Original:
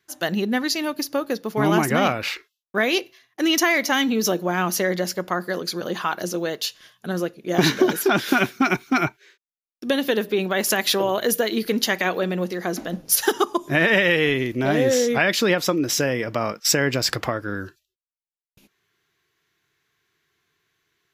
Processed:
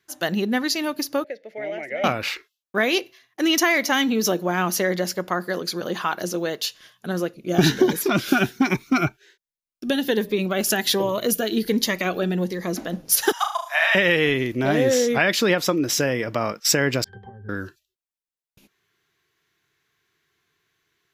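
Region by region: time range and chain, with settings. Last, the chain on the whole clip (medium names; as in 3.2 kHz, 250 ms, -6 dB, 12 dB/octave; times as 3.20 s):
1.24–2.04 s: two resonant band-passes 1.1 kHz, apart 1.8 oct + three bands compressed up and down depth 40%
7.34–12.75 s: bass shelf 110 Hz +10.5 dB + Shepard-style phaser rising 1.3 Hz
13.32–13.95 s: steep high-pass 640 Hz 72 dB/octave + flutter echo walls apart 6.3 m, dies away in 0.42 s
17.04–17.49 s: tilt shelf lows +6.5 dB, about 1.1 kHz + compression 5:1, threshold -22 dBFS + pitch-class resonator G, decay 0.21 s
whole clip: none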